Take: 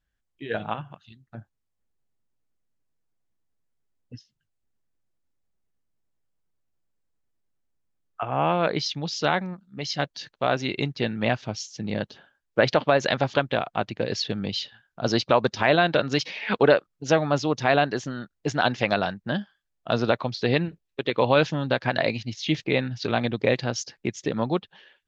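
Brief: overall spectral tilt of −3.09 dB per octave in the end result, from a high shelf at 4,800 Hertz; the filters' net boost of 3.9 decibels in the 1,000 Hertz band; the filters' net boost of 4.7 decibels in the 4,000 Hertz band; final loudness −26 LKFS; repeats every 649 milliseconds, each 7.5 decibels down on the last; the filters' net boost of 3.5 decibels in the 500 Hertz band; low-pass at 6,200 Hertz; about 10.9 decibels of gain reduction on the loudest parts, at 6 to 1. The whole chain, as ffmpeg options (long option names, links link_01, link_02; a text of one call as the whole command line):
ffmpeg -i in.wav -af "lowpass=6200,equalizer=frequency=500:width_type=o:gain=3,equalizer=frequency=1000:width_type=o:gain=4,equalizer=frequency=4000:width_type=o:gain=7.5,highshelf=frequency=4800:gain=-3,acompressor=threshold=-22dB:ratio=6,aecho=1:1:649|1298|1947|2596|3245:0.422|0.177|0.0744|0.0312|0.0131,volume=2dB" out.wav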